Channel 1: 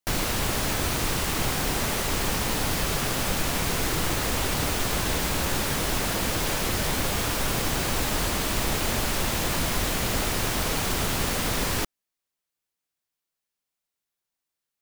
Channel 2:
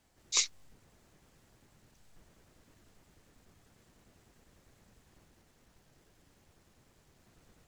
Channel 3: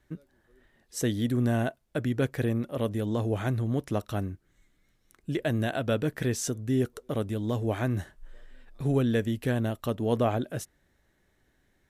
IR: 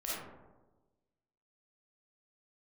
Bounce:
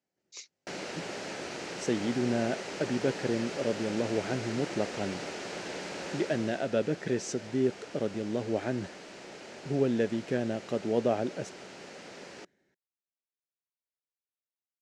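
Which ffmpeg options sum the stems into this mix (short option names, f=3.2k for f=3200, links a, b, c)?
-filter_complex "[0:a]bass=f=250:g=-7,treble=f=4k:g=-3,adelay=600,volume=-9dB,afade=t=out:st=6.11:d=0.59:silence=0.398107[a];[1:a]volume=-15.5dB[b];[2:a]adelay=850,volume=-3dB[c];[a][b][c]amix=inputs=3:normalize=0,highpass=180,equalizer=f=180:t=q:w=4:g=6,equalizer=f=380:t=q:w=4:g=5,equalizer=f=560:t=q:w=4:g=4,equalizer=f=1.1k:t=q:w=4:g=-8,equalizer=f=3.5k:t=q:w=4:g=-5,lowpass=f=6.9k:w=0.5412,lowpass=f=6.9k:w=1.3066"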